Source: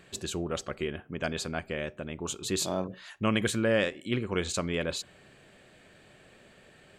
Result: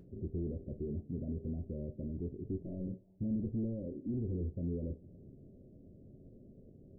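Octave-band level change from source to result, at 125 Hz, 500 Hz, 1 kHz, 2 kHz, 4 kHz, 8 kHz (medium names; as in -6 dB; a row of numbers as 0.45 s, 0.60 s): -2.0 dB, -13.0 dB, under -30 dB, under -40 dB, under -40 dB, under -40 dB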